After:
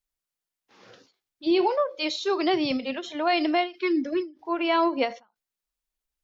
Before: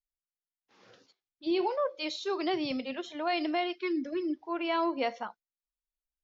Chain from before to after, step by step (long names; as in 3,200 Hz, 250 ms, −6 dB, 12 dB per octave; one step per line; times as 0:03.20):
every ending faded ahead of time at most 200 dB per second
level +7 dB